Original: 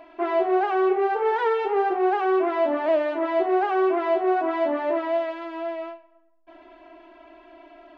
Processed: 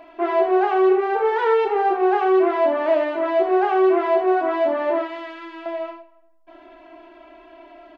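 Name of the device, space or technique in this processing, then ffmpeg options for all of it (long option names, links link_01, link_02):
slapback doubling: -filter_complex "[0:a]asettb=1/sr,asplit=3[link_01][link_02][link_03];[link_01]atrim=end=5.024[link_04];[link_02]atrim=start=5.02:end=5.66,asetpts=PTS-STARTPTS,afade=type=in:duration=0.004:curve=qsin,afade=type=out:start_time=0.636:duration=0.004:curve=qsin,equalizer=frequency=620:width_type=o:width=1:gain=-15[link_05];[link_03]atrim=start=5.656[link_06];[link_04][link_05]acrossfade=duration=0.004:curve1=hsin:curve2=qsin[link_07];[link_07][link_06]acrossfade=duration=0.004:curve1=qsin:curve2=hsin,asplit=3[link_08][link_09][link_10];[link_09]adelay=29,volume=-8dB[link_11];[link_10]adelay=80,volume=-9dB[link_12];[link_08][link_11][link_12]amix=inputs=3:normalize=0,volume=2dB"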